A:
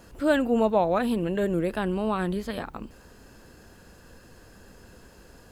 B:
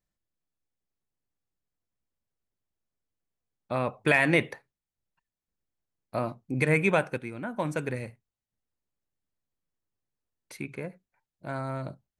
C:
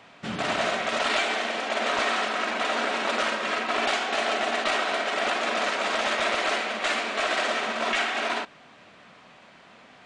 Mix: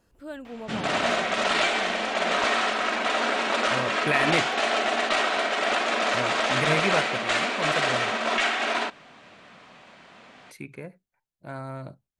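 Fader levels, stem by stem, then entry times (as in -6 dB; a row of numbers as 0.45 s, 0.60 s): -16.0 dB, -2.5 dB, +1.5 dB; 0.00 s, 0.00 s, 0.45 s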